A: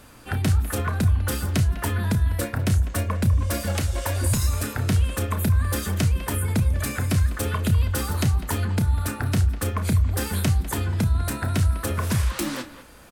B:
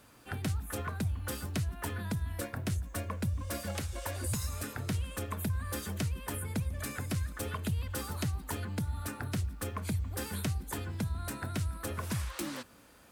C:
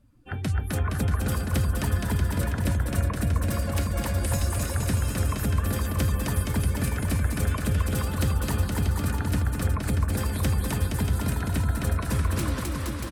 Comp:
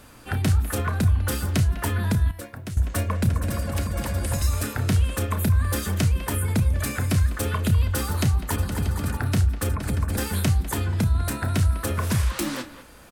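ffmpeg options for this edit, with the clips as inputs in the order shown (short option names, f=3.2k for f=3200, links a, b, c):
-filter_complex "[2:a]asplit=3[a][b][c];[0:a]asplit=5[d][e][f][g][h];[d]atrim=end=2.312[i];[1:a]atrim=start=2.308:end=2.772[j];[e]atrim=start=2.768:end=3.292[k];[a]atrim=start=3.288:end=4.422[l];[f]atrim=start=4.418:end=8.562[m];[b]atrim=start=8.558:end=9.172[n];[g]atrim=start=9.168:end=9.692[o];[c]atrim=start=9.688:end=10.182[p];[h]atrim=start=10.178[q];[i][j]acrossfade=d=0.004:c1=hsin:c2=hsin[r];[r][k]acrossfade=d=0.004:c1=hsin:c2=hsin[s];[s][l]acrossfade=d=0.004:c1=hsin:c2=hsin[t];[t][m]acrossfade=d=0.004:c1=hsin:c2=hsin[u];[u][n]acrossfade=d=0.004:c1=hsin:c2=hsin[v];[v][o]acrossfade=d=0.004:c1=hsin:c2=hsin[w];[w][p]acrossfade=d=0.004:c1=hsin:c2=hsin[x];[x][q]acrossfade=d=0.004:c1=hsin:c2=hsin"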